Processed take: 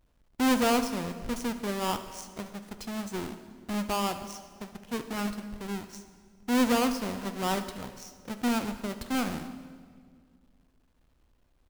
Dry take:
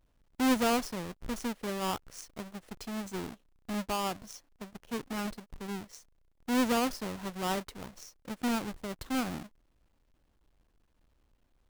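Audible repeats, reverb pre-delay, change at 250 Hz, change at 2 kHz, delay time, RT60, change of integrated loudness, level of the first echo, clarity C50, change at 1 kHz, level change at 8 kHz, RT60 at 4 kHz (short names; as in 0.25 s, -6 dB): 1, 5 ms, +3.5 dB, +3.0 dB, 75 ms, 1.9 s, +3.0 dB, -19.0 dB, 10.5 dB, +3.0 dB, +3.0 dB, 1.5 s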